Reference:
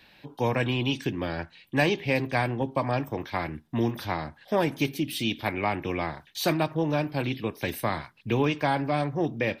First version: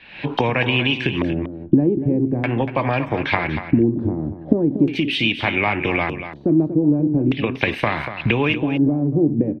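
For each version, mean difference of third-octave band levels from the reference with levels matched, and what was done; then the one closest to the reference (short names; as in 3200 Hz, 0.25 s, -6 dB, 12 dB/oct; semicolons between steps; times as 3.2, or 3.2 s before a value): 9.5 dB: recorder AGC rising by 63 dB/s; LFO low-pass square 0.41 Hz 320–2600 Hz; echo 0.238 s -10.5 dB; gain +4 dB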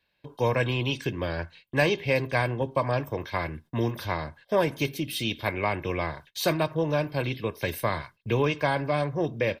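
2.0 dB: gate -49 dBFS, range -19 dB; bell 85 Hz +3 dB 0.22 oct; comb 1.9 ms, depth 41%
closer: second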